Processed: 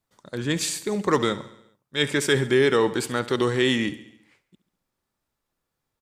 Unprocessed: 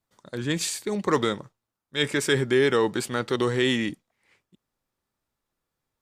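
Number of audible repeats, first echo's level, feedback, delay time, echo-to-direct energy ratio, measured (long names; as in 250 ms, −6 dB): 5, −16.5 dB, 59%, 69 ms, −14.5 dB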